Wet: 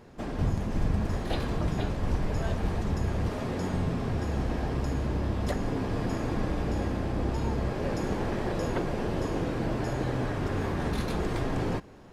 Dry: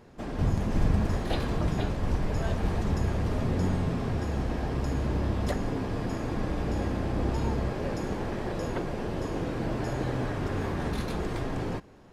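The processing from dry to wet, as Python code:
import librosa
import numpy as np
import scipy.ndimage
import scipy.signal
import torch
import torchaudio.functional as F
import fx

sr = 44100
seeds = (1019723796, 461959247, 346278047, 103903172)

y = fx.low_shelf(x, sr, hz=160.0, db=-11.5, at=(3.29, 3.74))
y = fx.rider(y, sr, range_db=3, speed_s=0.5)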